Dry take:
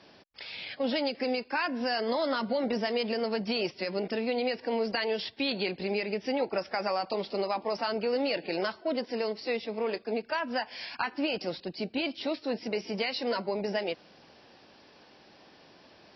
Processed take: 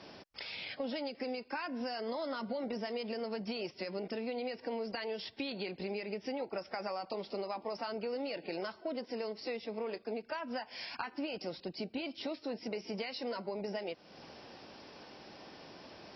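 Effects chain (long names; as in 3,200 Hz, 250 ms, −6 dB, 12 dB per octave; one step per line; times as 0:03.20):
parametric band 5,300 Hz +6 dB 0.25 octaves
downward compressor 3 to 1, threshold −44 dBFS, peak gain reduction 14.5 dB
high-shelf EQ 3,700 Hz −6 dB
notch filter 1,700 Hz, Q 19
level +4.5 dB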